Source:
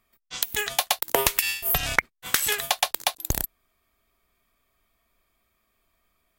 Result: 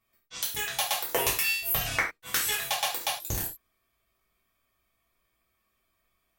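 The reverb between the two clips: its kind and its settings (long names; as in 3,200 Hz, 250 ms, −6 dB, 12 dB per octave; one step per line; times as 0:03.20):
reverb whose tail is shaped and stops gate 130 ms falling, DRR −6 dB
level −10.5 dB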